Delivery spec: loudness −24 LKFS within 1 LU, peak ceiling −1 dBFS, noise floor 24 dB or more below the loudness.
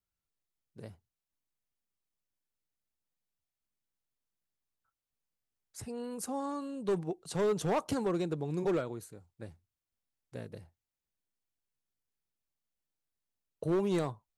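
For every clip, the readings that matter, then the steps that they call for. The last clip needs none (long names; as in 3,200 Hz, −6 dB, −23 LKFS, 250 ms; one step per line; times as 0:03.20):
share of clipped samples 0.7%; peaks flattened at −25.0 dBFS; integrated loudness −34.0 LKFS; sample peak −25.0 dBFS; target loudness −24.0 LKFS
→ clipped peaks rebuilt −25 dBFS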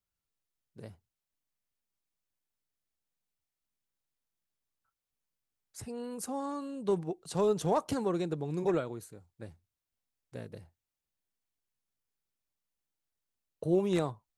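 share of clipped samples 0.0%; integrated loudness −32.5 LKFS; sample peak −17.0 dBFS; target loudness −24.0 LKFS
→ level +8.5 dB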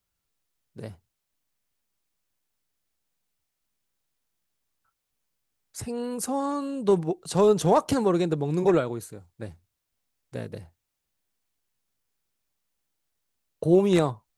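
integrated loudness −24.0 LKFS; sample peak −8.5 dBFS; background noise floor −82 dBFS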